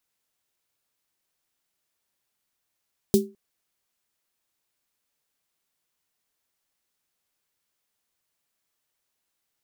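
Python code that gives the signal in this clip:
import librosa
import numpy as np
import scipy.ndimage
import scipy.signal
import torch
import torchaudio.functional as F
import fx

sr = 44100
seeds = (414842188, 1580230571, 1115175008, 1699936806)

y = fx.drum_snare(sr, seeds[0], length_s=0.21, hz=210.0, second_hz=390.0, noise_db=-10.0, noise_from_hz=3800.0, decay_s=0.28, noise_decay_s=0.16)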